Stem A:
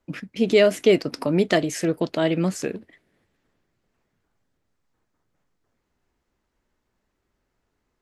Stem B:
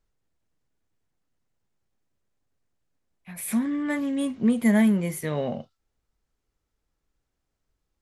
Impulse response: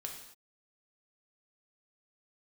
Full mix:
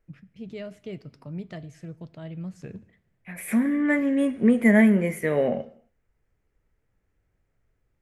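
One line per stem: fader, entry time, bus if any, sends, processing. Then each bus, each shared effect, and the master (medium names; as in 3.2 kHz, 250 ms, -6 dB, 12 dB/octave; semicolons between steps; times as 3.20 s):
2.49 s -21.5 dB -> 2.78 s -11 dB, 0.00 s, send -12 dB, resonant low shelf 200 Hz +13.5 dB, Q 1.5; auto duck -13 dB, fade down 0.25 s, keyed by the second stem
+1.5 dB, 0.00 s, send -8.5 dB, graphic EQ 125/500/1000/2000/4000 Hz -6/+5/-6/+9/-10 dB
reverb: on, pre-delay 3 ms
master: treble shelf 3.8 kHz -8.5 dB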